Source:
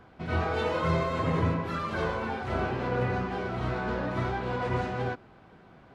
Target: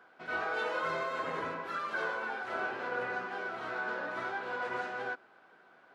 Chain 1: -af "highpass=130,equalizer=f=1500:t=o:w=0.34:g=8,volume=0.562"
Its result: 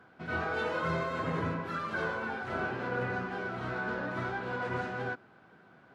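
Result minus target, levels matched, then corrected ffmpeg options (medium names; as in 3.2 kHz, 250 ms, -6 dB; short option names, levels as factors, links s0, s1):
125 Hz band +15.5 dB
-af "highpass=440,equalizer=f=1500:t=o:w=0.34:g=8,volume=0.562"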